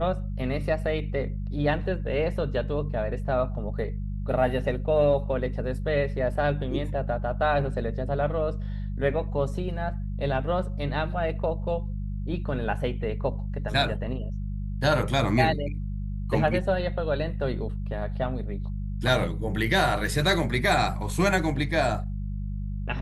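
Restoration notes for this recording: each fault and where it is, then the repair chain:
mains hum 50 Hz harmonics 4 −31 dBFS
0:20.06: drop-out 2.1 ms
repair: hum removal 50 Hz, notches 4
repair the gap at 0:20.06, 2.1 ms

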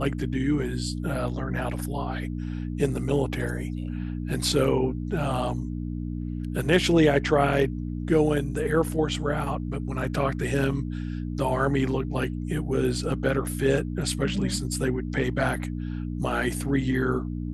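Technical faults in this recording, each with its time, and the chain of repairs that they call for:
mains hum 60 Hz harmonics 5 −31 dBFS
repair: hum removal 60 Hz, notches 5

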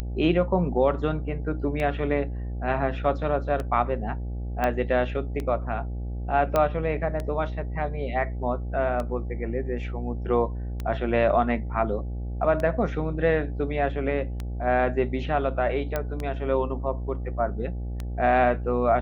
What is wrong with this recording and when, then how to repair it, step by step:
mains buzz 60 Hz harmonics 14 −31 dBFS
scratch tick 33 1/3 rpm −18 dBFS
0:04.64: click −13 dBFS
0:06.56: click −10 dBFS
0:15.96: click −13 dBFS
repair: click removal
hum removal 60 Hz, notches 14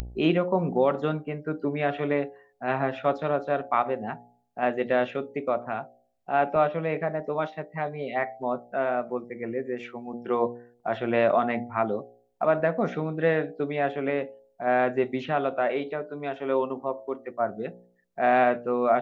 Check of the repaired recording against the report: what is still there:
none of them is left

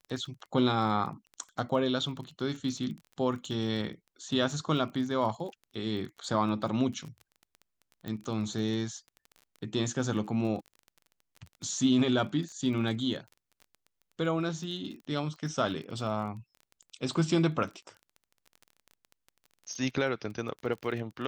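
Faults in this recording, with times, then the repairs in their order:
surface crackle 21 per second −39 dBFS
0:08.08: click −25 dBFS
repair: click removal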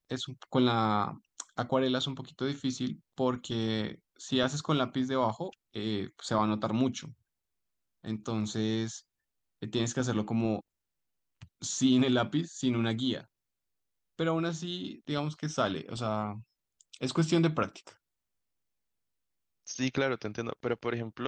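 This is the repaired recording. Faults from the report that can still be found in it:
none of them is left

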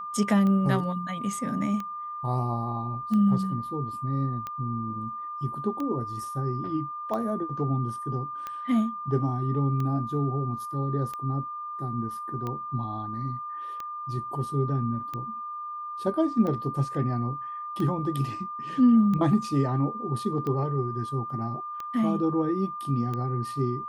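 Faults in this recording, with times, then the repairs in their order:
scratch tick 45 rpm −21 dBFS
whistle 1,200 Hz −33 dBFS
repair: click removal
notch filter 1,200 Hz, Q 30

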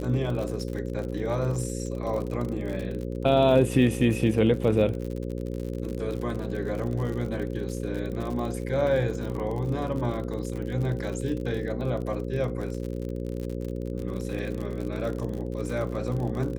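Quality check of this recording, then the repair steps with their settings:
mains buzz 60 Hz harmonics 9 −32 dBFS
surface crackle 57 per second −32 dBFS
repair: click removal
hum removal 60 Hz, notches 9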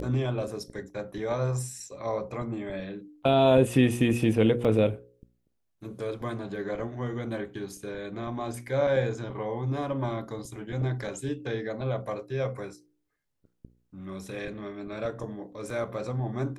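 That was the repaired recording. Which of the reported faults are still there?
none of them is left

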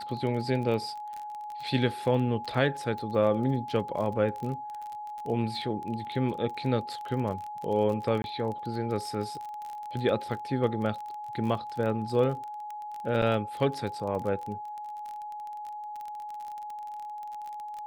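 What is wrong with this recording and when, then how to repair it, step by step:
surface crackle 27 per second −34 dBFS
whistle 840 Hz −36 dBFS
0:08.22–0:08.24: drop-out 21 ms
0:13.22: drop-out 4.6 ms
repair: click removal
notch filter 840 Hz, Q 30
repair the gap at 0:08.22, 21 ms
repair the gap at 0:13.22, 4.6 ms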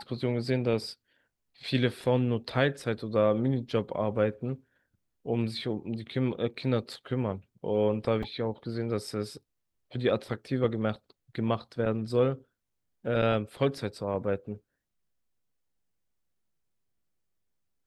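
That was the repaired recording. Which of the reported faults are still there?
none of them is left

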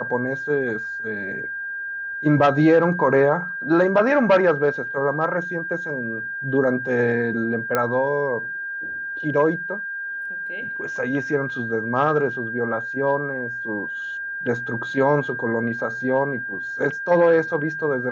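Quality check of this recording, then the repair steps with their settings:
whistle 1,600 Hz −27 dBFS
0:07.75: click −7 dBFS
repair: click removal
notch filter 1,600 Hz, Q 30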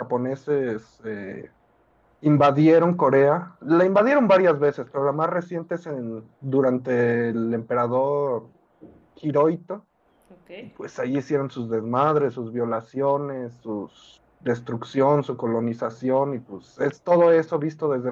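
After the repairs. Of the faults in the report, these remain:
0:07.75: click

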